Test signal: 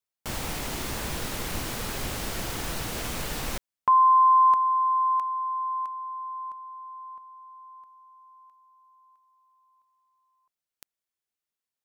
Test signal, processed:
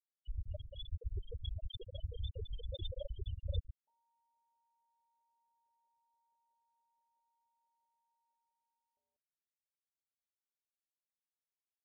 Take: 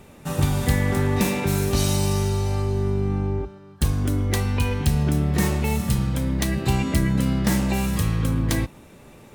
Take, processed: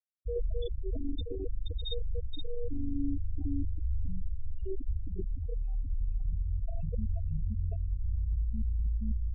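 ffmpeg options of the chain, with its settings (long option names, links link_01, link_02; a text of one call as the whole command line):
ffmpeg -i in.wav -filter_complex "[0:a]asplit=2[link_01][link_02];[link_02]aecho=0:1:477|954|1431|1908|2385:0.631|0.227|0.0818|0.0294|0.0106[link_03];[link_01][link_03]amix=inputs=2:normalize=0,alimiter=limit=-20dB:level=0:latency=1:release=33,afreqshift=-110,crystalizer=i=9:c=0,adynamicequalizer=threshold=0.00708:dfrequency=520:dqfactor=1.9:tfrequency=520:tqfactor=1.9:attack=5:release=100:ratio=0.4:range=3:mode=boostabove:tftype=bell,dynaudnorm=framelen=620:gausssize=7:maxgain=9dB,equalizer=frequency=120:width=4.2:gain=-14.5,aresample=8000,aresample=44100,areverse,acompressor=threshold=-32dB:ratio=5:attack=32:release=350:knee=1:detection=rms,areverse,afftfilt=real='re*gte(hypot(re,im),0.0794)':imag='im*gte(hypot(re,im),0.0794)':win_size=1024:overlap=0.75,asuperstop=centerf=1500:order=20:qfactor=0.53,volume=6.5dB" out.wav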